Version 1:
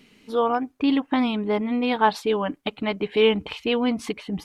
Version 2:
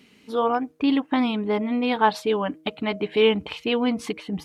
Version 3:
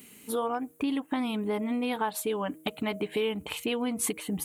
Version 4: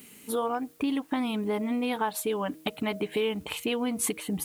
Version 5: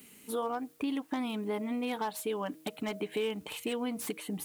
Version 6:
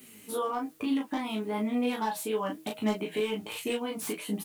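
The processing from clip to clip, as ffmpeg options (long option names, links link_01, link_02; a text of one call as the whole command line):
ffmpeg -i in.wav -af "highpass=60,bandreject=frequency=157.5:width_type=h:width=4,bandreject=frequency=315:width_type=h:width=4,bandreject=frequency=472.5:width_type=h:width=4,bandreject=frequency=630:width_type=h:width=4" out.wav
ffmpeg -i in.wav -af "acompressor=threshold=-28dB:ratio=4,aexciter=amount=9.7:drive=5.7:freq=7400" out.wav
ffmpeg -i in.wav -af "acrusher=bits=9:mix=0:aa=0.000001,volume=1dB" out.wav
ffmpeg -i in.wav -filter_complex "[0:a]acrossover=split=140|1000[link_01][link_02][link_03];[link_01]acompressor=threshold=-60dB:ratio=6[link_04];[link_03]aeval=exprs='0.0316*(abs(mod(val(0)/0.0316+3,4)-2)-1)':channel_layout=same[link_05];[link_04][link_02][link_05]amix=inputs=3:normalize=0,volume=-4.5dB" out.wav
ffmpeg -i in.wav -filter_complex "[0:a]flanger=delay=7.7:depth=4.8:regen=39:speed=1.1:shape=triangular,asplit=2[link_01][link_02];[link_02]aecho=0:1:19|37:0.631|0.631[link_03];[link_01][link_03]amix=inputs=2:normalize=0,volume=4.5dB" out.wav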